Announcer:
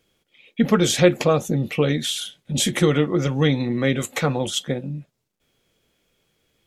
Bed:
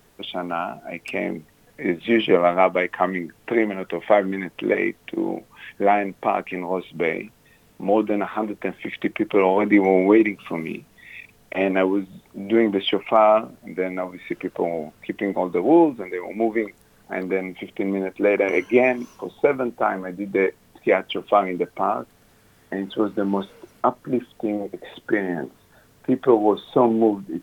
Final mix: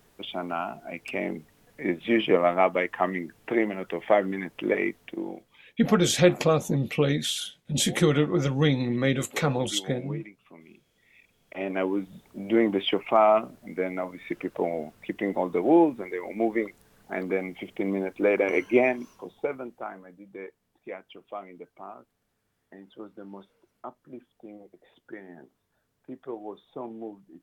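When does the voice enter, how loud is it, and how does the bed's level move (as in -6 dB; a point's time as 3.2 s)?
5.20 s, -3.5 dB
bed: 4.98 s -4.5 dB
5.95 s -23 dB
10.85 s -23 dB
12.06 s -4 dB
18.79 s -4 dB
20.32 s -20.5 dB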